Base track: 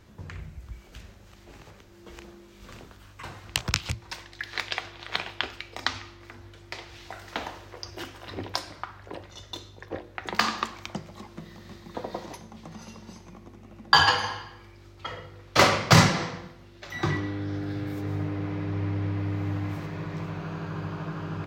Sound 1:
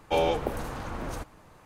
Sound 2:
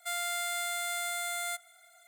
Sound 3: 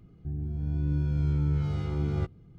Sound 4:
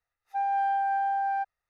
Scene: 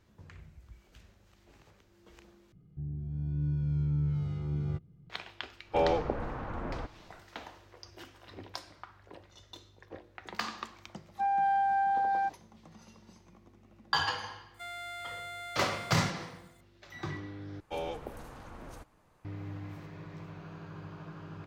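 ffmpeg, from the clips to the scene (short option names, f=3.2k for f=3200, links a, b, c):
-filter_complex "[1:a]asplit=2[a][b];[0:a]volume=-11.5dB[c];[3:a]equalizer=f=150:t=o:w=0.76:g=8.5[d];[a]lowpass=2k[e];[2:a]acrossover=split=4000[f][g];[g]acompressor=threshold=-52dB:ratio=4:attack=1:release=60[h];[f][h]amix=inputs=2:normalize=0[i];[c]asplit=3[j][k][l];[j]atrim=end=2.524[m];[d]atrim=end=2.58,asetpts=PTS-STARTPTS,volume=-10dB[n];[k]atrim=start=5.096:end=17.604[o];[b]atrim=end=1.65,asetpts=PTS-STARTPTS,volume=-12dB[p];[l]atrim=start=19.246[q];[e]atrim=end=1.65,asetpts=PTS-STARTPTS,volume=-2dB,afade=t=in:d=0.1,afade=t=out:st=1.55:d=0.1,adelay=5630[r];[4:a]atrim=end=1.69,asetpts=PTS-STARTPTS,volume=-1dB,afade=t=in:d=0.004:c=hsin,afade=t=out:st=1.686:d=0.004:c=hsin,adelay=10850[s];[i]atrim=end=2.07,asetpts=PTS-STARTPTS,volume=-6.5dB,afade=t=in:d=0.004:c=hsin,afade=t=out:st=2.066:d=0.004:c=hsin,adelay=14540[t];[m][n]acrossfade=d=0.004:c1=hsin:c2=hsin[u];[u][o]acrossfade=d=0.004:c1=hsin:c2=hsin[v];[v][p]acrossfade=d=0.004:c1=hsin:c2=hsin[w];[w][q]acrossfade=d=0.004:c1=hsin:c2=hsin[x];[x][r][s][t]amix=inputs=4:normalize=0"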